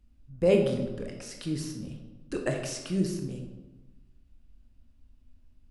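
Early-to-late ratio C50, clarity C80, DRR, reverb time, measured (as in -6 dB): 5.5 dB, 7.5 dB, 2.0 dB, 1.2 s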